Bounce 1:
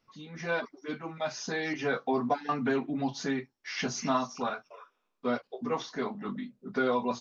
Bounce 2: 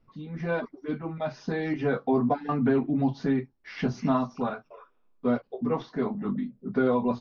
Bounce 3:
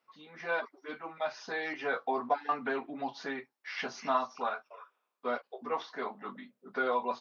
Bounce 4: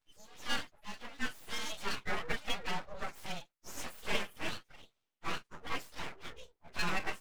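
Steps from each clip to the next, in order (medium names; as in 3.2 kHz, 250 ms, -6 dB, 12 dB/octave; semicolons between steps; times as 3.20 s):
low-pass 5.3 kHz 24 dB/octave; tilt EQ -3.5 dB/octave
high-pass 790 Hz 12 dB/octave; trim +2 dB
frequency axis rescaled in octaves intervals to 122%; full-wave rectifier; trim +2 dB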